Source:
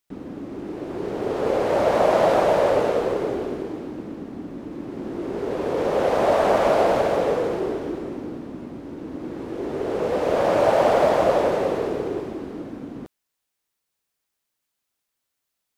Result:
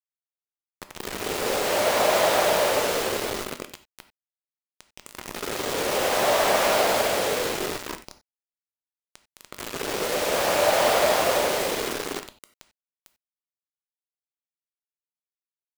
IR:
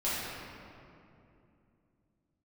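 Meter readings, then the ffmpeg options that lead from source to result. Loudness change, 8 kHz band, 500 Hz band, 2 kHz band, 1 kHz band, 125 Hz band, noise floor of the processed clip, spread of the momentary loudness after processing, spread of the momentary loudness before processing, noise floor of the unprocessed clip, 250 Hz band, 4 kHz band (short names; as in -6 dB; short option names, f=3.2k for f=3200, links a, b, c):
-1.0 dB, n/a, -4.5 dB, +4.5 dB, -2.0 dB, -7.0 dB, under -85 dBFS, 16 LU, 17 LU, -80 dBFS, -8.0 dB, +10.0 dB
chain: -filter_complex "[0:a]tiltshelf=f=1.4k:g=-9.5,acrusher=bits=4:mix=0:aa=0.000001,asplit=2[a][b];[1:a]atrim=start_sample=2205,atrim=end_sample=4410[c];[b][c]afir=irnorm=-1:irlink=0,volume=-12.5dB[d];[a][d]amix=inputs=2:normalize=0"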